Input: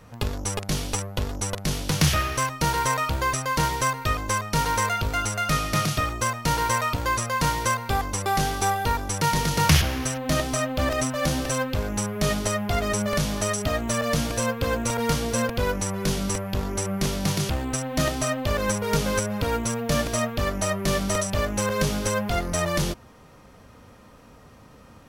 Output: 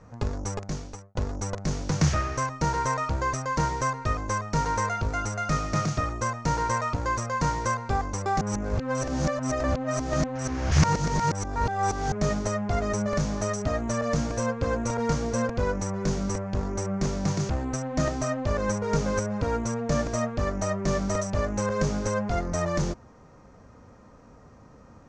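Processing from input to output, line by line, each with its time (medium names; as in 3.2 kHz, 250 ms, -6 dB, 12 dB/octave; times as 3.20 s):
0.47–1.15 s: fade out linear
8.41–12.12 s: reverse
whole clip: Chebyshev low-pass 6.8 kHz, order 4; peaking EQ 3.2 kHz -14.5 dB 1.2 oct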